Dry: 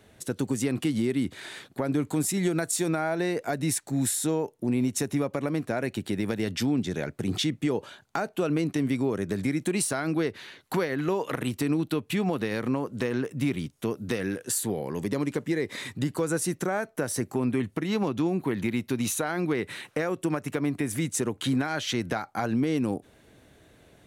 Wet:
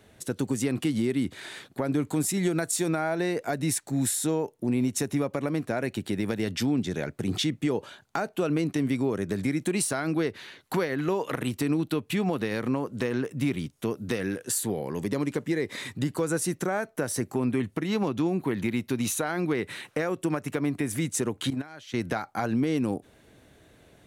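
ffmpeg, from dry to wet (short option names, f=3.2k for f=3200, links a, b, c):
-filter_complex "[0:a]asettb=1/sr,asplit=3[a][b][c];[a]atrim=end=21.504[d];[b]atrim=start=21.5:end=21.94,asetpts=PTS-STARTPTS,afade=t=in:d=0.004:c=qsin,afade=t=out:st=0.436:d=0.004:c=qsin,agate=range=-15dB:threshold=-24dB:ratio=16:release=100:detection=peak[e];[c]atrim=start=21.936[f];[d][e]acrossfade=d=0.004:c1=hsin:c2=qsin[g];[g][f]acrossfade=d=0.004:c1=qsin:c2=hsin"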